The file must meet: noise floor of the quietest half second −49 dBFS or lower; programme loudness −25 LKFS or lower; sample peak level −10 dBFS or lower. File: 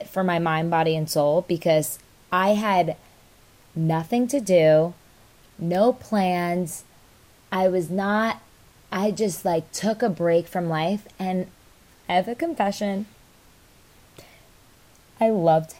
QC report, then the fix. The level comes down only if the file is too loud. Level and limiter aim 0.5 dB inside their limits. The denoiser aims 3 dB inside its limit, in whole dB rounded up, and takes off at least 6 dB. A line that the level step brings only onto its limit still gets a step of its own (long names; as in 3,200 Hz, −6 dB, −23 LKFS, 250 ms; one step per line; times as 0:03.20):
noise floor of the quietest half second −54 dBFS: in spec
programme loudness −23.0 LKFS: out of spec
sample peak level −7.0 dBFS: out of spec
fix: level −2.5 dB
brickwall limiter −10.5 dBFS